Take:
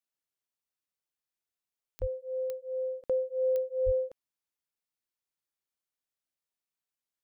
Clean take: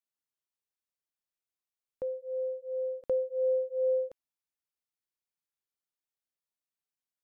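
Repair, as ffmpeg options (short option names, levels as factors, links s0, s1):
-filter_complex "[0:a]adeclick=t=4,asplit=3[s0][s1][s2];[s0]afade=t=out:st=2:d=0.02[s3];[s1]highpass=f=140:w=0.5412,highpass=f=140:w=1.3066,afade=t=in:st=2:d=0.02,afade=t=out:st=2.12:d=0.02[s4];[s2]afade=t=in:st=2.12:d=0.02[s5];[s3][s4][s5]amix=inputs=3:normalize=0,asplit=3[s6][s7][s8];[s6]afade=t=out:st=3.85:d=0.02[s9];[s7]highpass=f=140:w=0.5412,highpass=f=140:w=1.3066,afade=t=in:st=3.85:d=0.02,afade=t=out:st=3.97:d=0.02[s10];[s8]afade=t=in:st=3.97:d=0.02[s11];[s9][s10][s11]amix=inputs=3:normalize=0"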